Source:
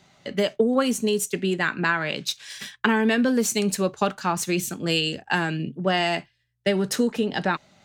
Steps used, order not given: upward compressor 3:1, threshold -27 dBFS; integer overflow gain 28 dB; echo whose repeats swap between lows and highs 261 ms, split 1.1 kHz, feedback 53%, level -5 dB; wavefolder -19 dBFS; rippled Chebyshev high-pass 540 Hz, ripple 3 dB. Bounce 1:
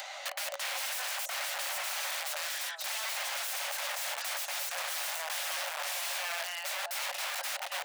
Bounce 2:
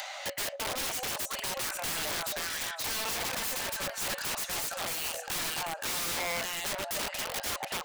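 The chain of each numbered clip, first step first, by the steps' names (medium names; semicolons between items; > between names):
upward compressor > echo whose repeats swap between lows and highs > wavefolder > integer overflow > rippled Chebyshev high-pass; echo whose repeats swap between lows and highs > wavefolder > rippled Chebyshev high-pass > upward compressor > integer overflow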